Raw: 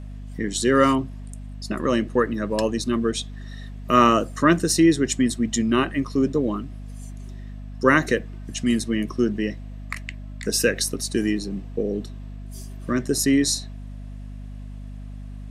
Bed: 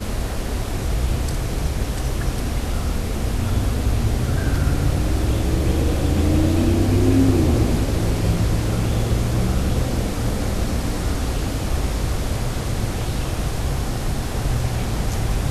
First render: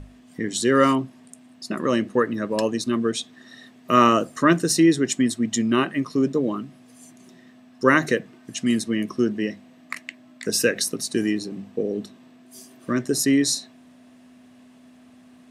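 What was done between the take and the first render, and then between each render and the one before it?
mains-hum notches 50/100/150/200 Hz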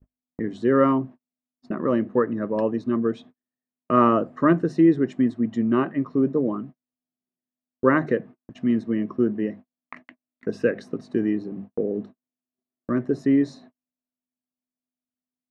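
noise gate −37 dBFS, range −45 dB
low-pass filter 1,200 Hz 12 dB per octave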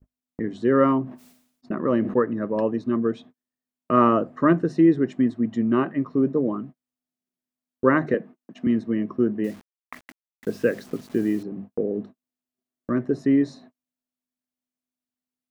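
0:01.03–0:02.20: level that may fall only so fast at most 83 dB per second
0:08.14–0:08.67: Butterworth high-pass 160 Hz
0:09.44–0:11.43: bit-depth reduction 8 bits, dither none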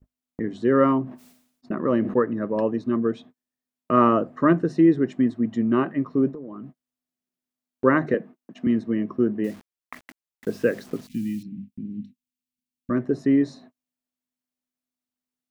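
0:06.29–0:07.84: downward compressor 16 to 1, threshold −32 dBFS
0:11.07–0:12.90: elliptic band-stop filter 240–2,400 Hz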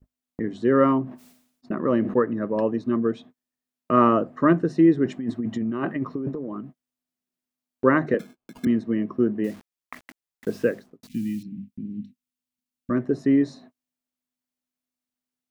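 0:05.05–0:06.61: compressor whose output falls as the input rises −26 dBFS
0:08.19–0:08.65: sample-rate reduction 1,900 Hz
0:10.58–0:11.03: fade out and dull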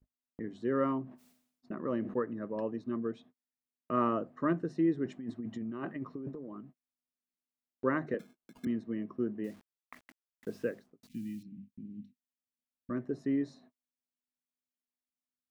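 level −12 dB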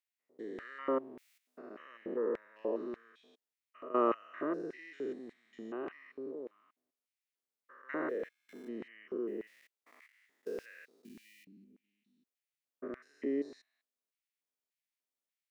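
spectrum averaged block by block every 200 ms
auto-filter high-pass square 1.7 Hz 420–2,100 Hz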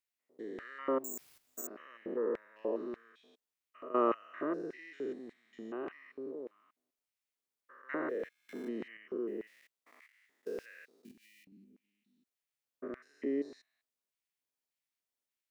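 0:01.04–0:01.67: bad sample-rate conversion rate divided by 6×, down none, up zero stuff
0:07.91–0:08.97: multiband upward and downward compressor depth 70%
0:11.11–0:11.52: downward compressor 12 to 1, threshold −58 dBFS

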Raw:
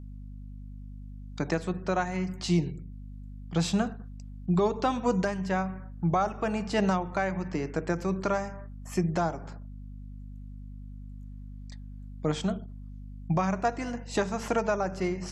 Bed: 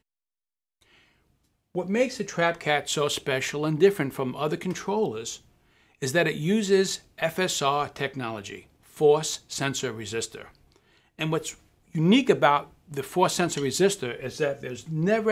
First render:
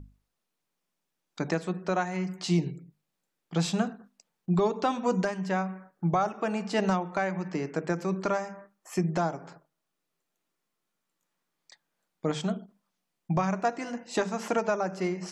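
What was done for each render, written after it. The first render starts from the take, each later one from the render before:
mains-hum notches 50/100/150/200/250 Hz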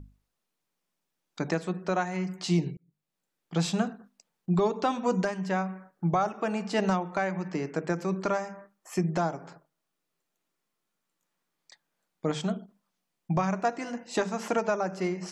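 0:02.77–0:03.57: fade in equal-power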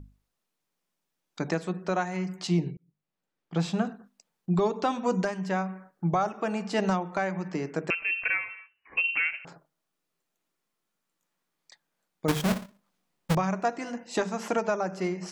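0:02.47–0:03.85: low-pass filter 2,900 Hz 6 dB per octave
0:07.90–0:09.45: voice inversion scrambler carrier 2,900 Hz
0:12.28–0:13.35: each half-wave held at its own peak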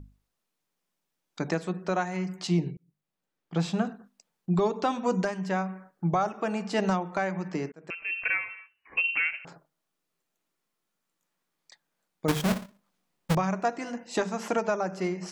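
0:07.72–0:08.29: fade in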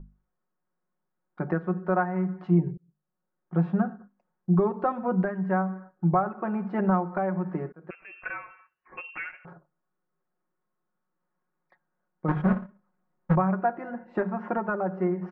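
Chebyshev low-pass filter 1,500 Hz, order 3
comb filter 5.5 ms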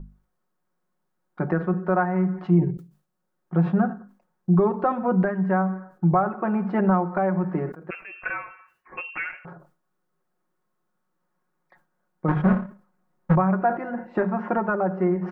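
in parallel at −1.5 dB: brickwall limiter −20.5 dBFS, peak gain reduction 8.5 dB
on the sum: level that may fall only so fast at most 150 dB per second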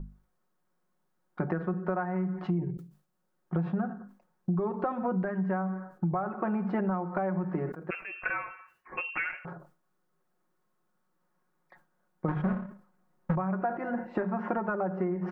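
downward compressor, threshold −27 dBFS, peak gain reduction 12.5 dB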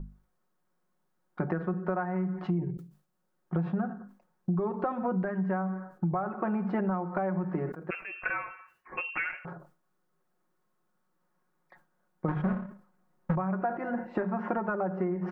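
no processing that can be heard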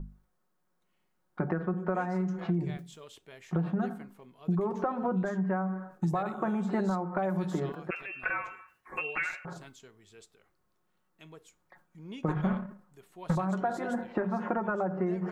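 mix in bed −24.5 dB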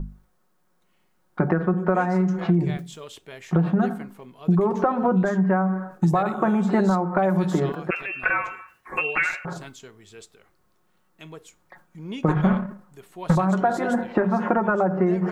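level +9.5 dB

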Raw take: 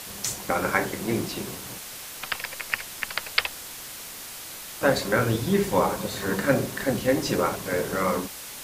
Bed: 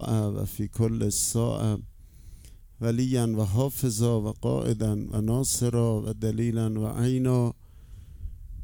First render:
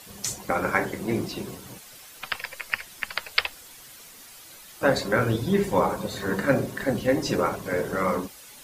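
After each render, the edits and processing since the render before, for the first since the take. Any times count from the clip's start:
broadband denoise 10 dB, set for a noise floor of −39 dBFS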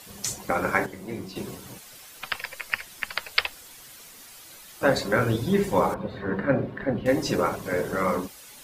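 0:00.86–0:01.36: tuned comb filter 94 Hz, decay 0.45 s, mix 70%
0:05.94–0:07.06: high-frequency loss of the air 440 metres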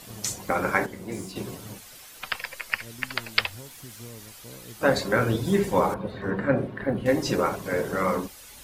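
mix in bed −19.5 dB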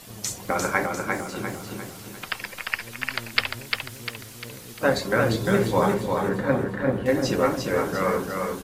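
repeating echo 349 ms, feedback 45%, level −4 dB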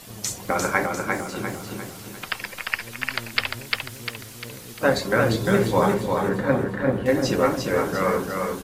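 level +1.5 dB
brickwall limiter −3 dBFS, peak gain reduction 3 dB

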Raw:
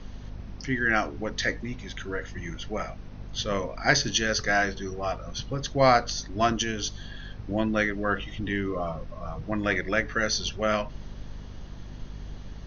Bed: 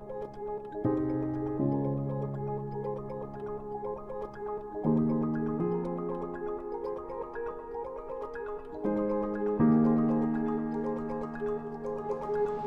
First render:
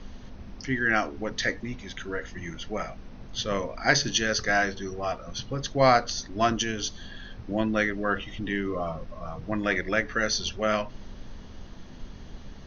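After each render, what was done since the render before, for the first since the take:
mains-hum notches 50/100/150 Hz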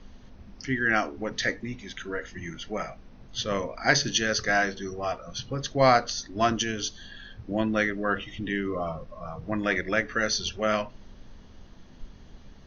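noise reduction from a noise print 6 dB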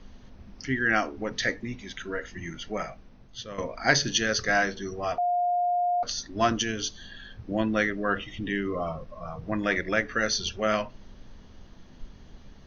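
0:02.84–0:03.58: fade out, to −13.5 dB
0:05.18–0:06.03: beep over 709 Hz −22 dBFS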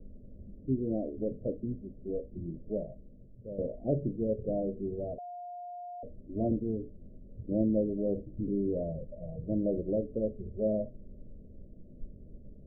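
Chebyshev low-pass filter 610 Hz, order 6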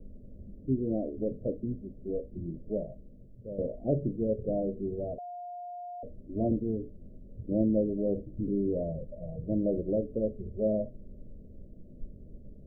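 level +1.5 dB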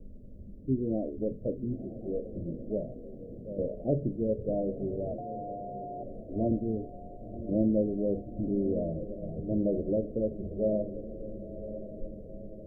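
feedback delay with all-pass diffusion 1,036 ms, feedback 52%, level −11 dB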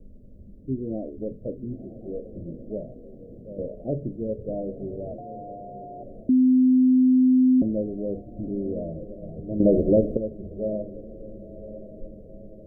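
0:06.29–0:07.62: beep over 256 Hz −14 dBFS
0:09.60–0:10.17: clip gain +10.5 dB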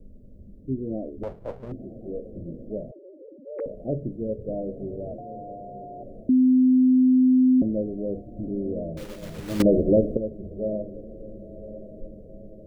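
0:01.23–0:01.72: lower of the sound and its delayed copy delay 1.7 ms
0:02.91–0:03.66: three sine waves on the formant tracks
0:08.97–0:09.64: one scale factor per block 3 bits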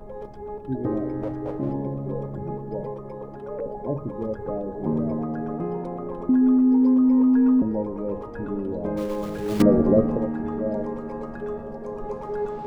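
mix in bed +1.5 dB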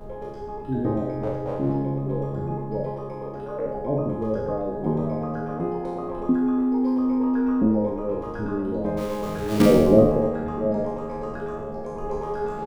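peak hold with a decay on every bin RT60 1.04 s
double-tracking delay 37 ms −7 dB

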